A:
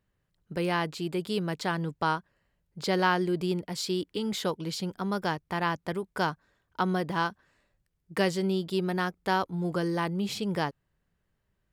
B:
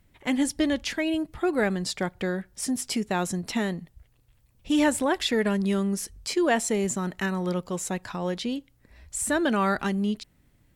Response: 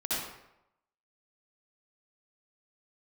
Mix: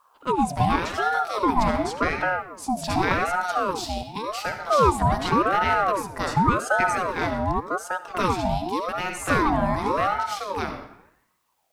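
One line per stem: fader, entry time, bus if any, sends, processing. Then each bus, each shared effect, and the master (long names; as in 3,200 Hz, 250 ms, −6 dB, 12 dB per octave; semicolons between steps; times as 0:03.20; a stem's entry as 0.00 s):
+1.0 dB, 0.00 s, send −10.5 dB, no processing
−4.5 dB, 0.00 s, send −18.5 dB, low shelf with overshoot 700 Hz +7.5 dB, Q 3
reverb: on, RT60 0.85 s, pre-delay 57 ms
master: bit-depth reduction 12 bits, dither triangular; ring modulator whose carrier an LFO sweeps 760 Hz, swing 45%, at 0.88 Hz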